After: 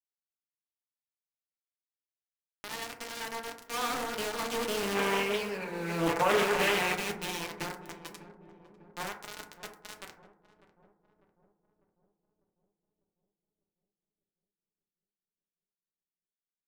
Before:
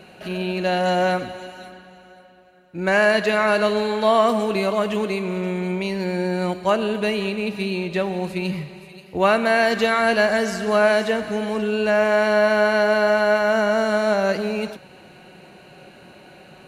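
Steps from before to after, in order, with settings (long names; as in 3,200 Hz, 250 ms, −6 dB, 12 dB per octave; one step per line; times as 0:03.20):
variable-slope delta modulation 64 kbit/s
source passing by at 0:05.63, 28 m/s, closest 3.9 metres
parametric band 650 Hz −11.5 dB 0.89 octaves
notch filter 2,000 Hz, Q 11
hum removal 437.9 Hz, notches 16
bit reduction 7 bits
low-shelf EQ 140 Hz −3 dB
compressor whose output falls as the input rises −39 dBFS, ratio −1
feedback echo with a low-pass in the loop 598 ms, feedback 61%, low-pass 1,000 Hz, level −14 dB
gain on a spectral selection 0:04.95–0:06.94, 400–2,700 Hz +7 dB
feedback delay network reverb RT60 0.57 s, low-frequency decay 0.8×, high-frequency decay 0.35×, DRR 1.5 dB
highs frequency-modulated by the lows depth 0.42 ms
level +6 dB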